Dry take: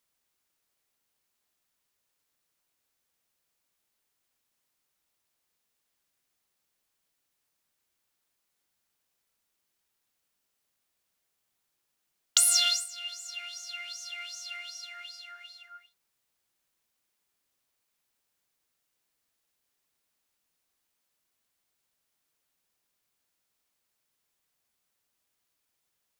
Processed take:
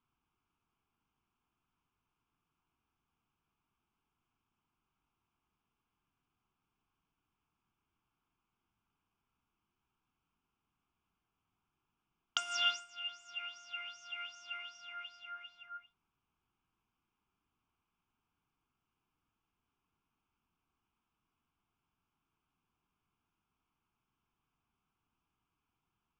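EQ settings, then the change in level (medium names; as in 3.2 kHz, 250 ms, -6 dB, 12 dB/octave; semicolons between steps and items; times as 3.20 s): tape spacing loss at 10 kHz 44 dB; band-stop 1.5 kHz, Q 26; static phaser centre 2.8 kHz, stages 8; +9.5 dB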